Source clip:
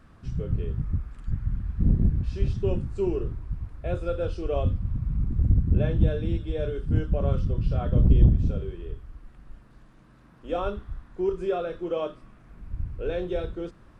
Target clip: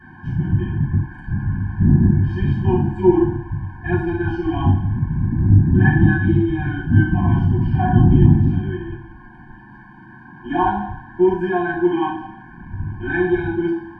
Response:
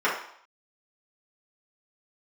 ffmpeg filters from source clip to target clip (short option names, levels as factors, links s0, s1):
-filter_complex "[0:a]equalizer=f=100:t=o:w=0.33:g=12,equalizer=f=1250:t=o:w=0.33:g=-10,equalizer=f=3150:t=o:w=0.33:g=11,asplit=2[s0][s1];[s1]acontrast=77,volume=0.841[s2];[s0][s2]amix=inputs=2:normalize=0,highshelf=f=2200:t=q:w=3:g=-7[s3];[1:a]atrim=start_sample=2205,asetrate=38808,aresample=44100[s4];[s3][s4]afir=irnorm=-1:irlink=0,afftfilt=real='re*eq(mod(floor(b*sr/1024/360),2),0)':imag='im*eq(mod(floor(b*sr/1024/360),2),0)':win_size=1024:overlap=0.75,volume=0.447"